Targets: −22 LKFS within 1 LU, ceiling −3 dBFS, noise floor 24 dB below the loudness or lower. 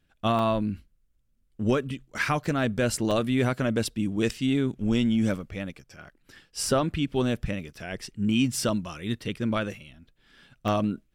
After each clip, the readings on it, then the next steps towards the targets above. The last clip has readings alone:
number of dropouts 4; longest dropout 1.2 ms; integrated loudness −27.5 LKFS; sample peak −13.5 dBFS; target loudness −22.0 LKFS
→ repair the gap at 0:00.39/0:02.46/0:03.11/0:10.68, 1.2 ms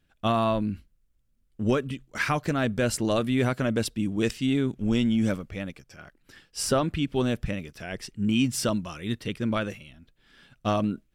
number of dropouts 0; integrated loudness −27.5 LKFS; sample peak −13.5 dBFS; target loudness −22.0 LKFS
→ level +5.5 dB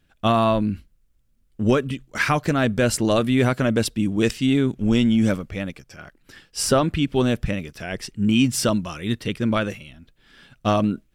integrated loudness −22.0 LKFS; sample peak −8.0 dBFS; background noise floor −63 dBFS

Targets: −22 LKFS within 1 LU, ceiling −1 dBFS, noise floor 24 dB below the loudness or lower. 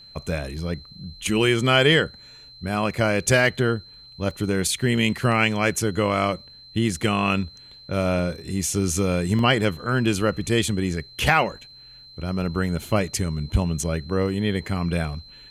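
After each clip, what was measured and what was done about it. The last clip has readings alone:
number of dropouts 3; longest dropout 1.4 ms; interfering tone 4,100 Hz; level of the tone −44 dBFS; integrated loudness −23.0 LKFS; sample peak −3.5 dBFS; target loudness −22.0 LKFS
→ repair the gap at 0:04.31/0:08.19/0:09.39, 1.4 ms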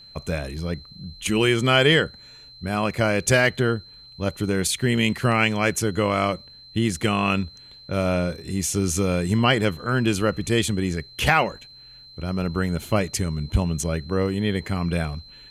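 number of dropouts 0; interfering tone 4,100 Hz; level of the tone −44 dBFS
→ notch filter 4,100 Hz, Q 30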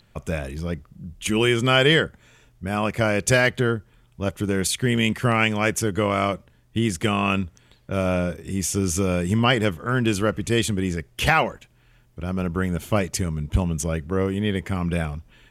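interfering tone none found; integrated loudness −23.0 LKFS; sample peak −3.5 dBFS; target loudness −22.0 LKFS
→ level +1 dB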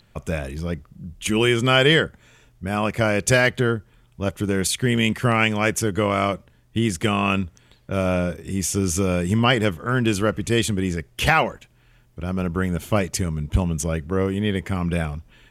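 integrated loudness −22.0 LKFS; sample peak −2.5 dBFS; background noise floor −57 dBFS

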